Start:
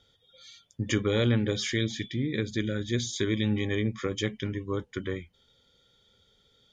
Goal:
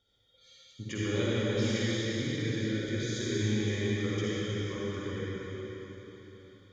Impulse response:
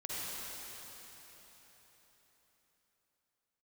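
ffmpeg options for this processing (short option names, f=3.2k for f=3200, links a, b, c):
-filter_complex "[1:a]atrim=start_sample=2205[a];[0:a][a]afir=irnorm=-1:irlink=0,volume=-5.5dB"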